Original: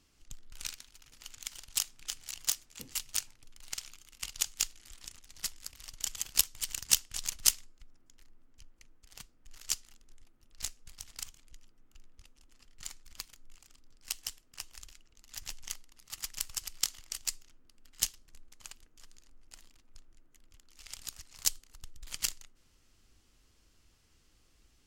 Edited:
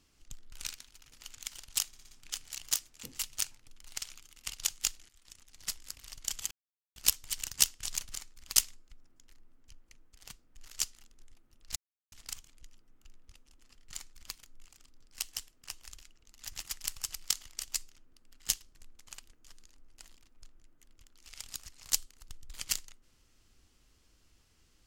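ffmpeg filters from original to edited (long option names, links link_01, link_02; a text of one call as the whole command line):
ffmpeg -i in.wav -filter_complex "[0:a]asplit=12[link_01][link_02][link_03][link_04][link_05][link_06][link_07][link_08][link_09][link_10][link_11][link_12];[link_01]atrim=end=1.932[link_13];[link_02]atrim=start=1.868:end=1.932[link_14];[link_03]atrim=start=1.868:end=1.932[link_15];[link_04]atrim=start=1.868:end=1.932[link_16];[link_05]atrim=start=1.868:end=4.85,asetpts=PTS-STARTPTS,afade=type=out:start_time=2.978:duration=0.004:curve=hsin:silence=0.125893[link_17];[link_06]atrim=start=4.85:end=6.27,asetpts=PTS-STARTPTS,afade=type=in:duration=0.63:silence=0.125893,afade=type=out:start_time=1.416:duration=0.004:curve=hsin,apad=pad_dur=0.45[link_18];[link_07]atrim=start=6.27:end=7.462,asetpts=PTS-STARTPTS,afade=type=in:duration=0.004:curve=hsin[link_19];[link_08]atrim=start=12.838:end=13.252[link_20];[link_09]atrim=start=7.458:end=10.66,asetpts=PTS-STARTPTS,afade=type=out:start_time=3.198:duration=0.004:curve=hsin[link_21];[link_10]atrim=start=10.66:end=11.02,asetpts=PTS-STARTPTS,volume=0[link_22];[link_11]atrim=start=11.02:end=15.512,asetpts=PTS-STARTPTS,afade=type=in:duration=0.004:curve=hsin[link_23];[link_12]atrim=start=16.138[link_24];[link_13][link_14]acrossfade=duration=0.004:curve1=hsin:curve2=hsin[link_25];[link_25][link_15]acrossfade=duration=0.004:curve1=hsin:curve2=hsin[link_26];[link_26][link_16]acrossfade=duration=0.004:curve1=hsin:curve2=hsin[link_27];[link_17][link_18][link_19]concat=n=3:v=0:a=1[link_28];[link_27][link_28]acrossfade=duration=0.004:curve1=hsin:curve2=hsin[link_29];[link_29][link_20]acrossfade=duration=0.004:curve1=hsin:curve2=hsin[link_30];[link_21][link_22][link_23]concat=n=3:v=0:a=1[link_31];[link_30][link_31]acrossfade=duration=0.004:curve1=hsin:curve2=hsin[link_32];[link_32][link_24]acrossfade=duration=0.004:curve1=hsin:curve2=hsin" out.wav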